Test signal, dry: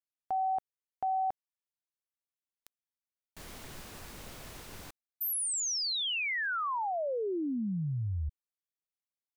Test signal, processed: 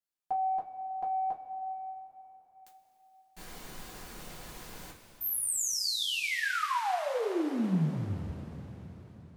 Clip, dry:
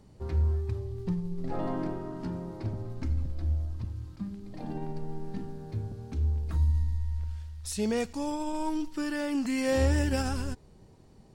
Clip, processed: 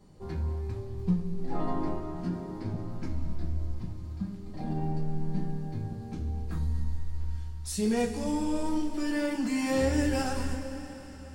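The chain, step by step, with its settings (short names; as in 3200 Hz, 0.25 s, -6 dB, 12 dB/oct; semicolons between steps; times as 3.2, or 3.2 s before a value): dynamic EQ 190 Hz, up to +5 dB, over -48 dBFS, Q 2.2; in parallel at -9.5 dB: soft clip -23.5 dBFS; on the sum: two-slope reverb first 0.21 s, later 4.6 s, from -20 dB, DRR -5 dB; gain -7.5 dB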